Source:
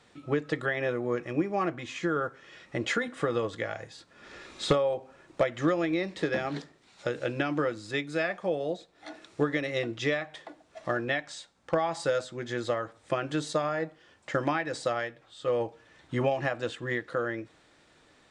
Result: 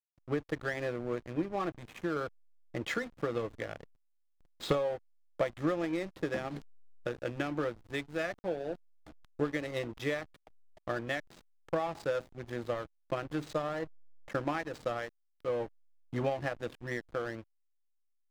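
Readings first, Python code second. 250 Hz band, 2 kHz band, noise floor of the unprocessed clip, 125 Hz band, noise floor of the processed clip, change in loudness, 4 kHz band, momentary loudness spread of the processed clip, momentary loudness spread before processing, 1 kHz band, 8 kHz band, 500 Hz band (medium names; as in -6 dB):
-5.0 dB, -6.5 dB, -62 dBFS, -4.5 dB, -75 dBFS, -5.5 dB, -7.5 dB, 9 LU, 13 LU, -6.0 dB, -9.0 dB, -5.5 dB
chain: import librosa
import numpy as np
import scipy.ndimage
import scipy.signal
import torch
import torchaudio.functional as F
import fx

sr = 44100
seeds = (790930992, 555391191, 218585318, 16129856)

y = fx.backlash(x, sr, play_db=-31.0)
y = y * librosa.db_to_amplitude(-4.5)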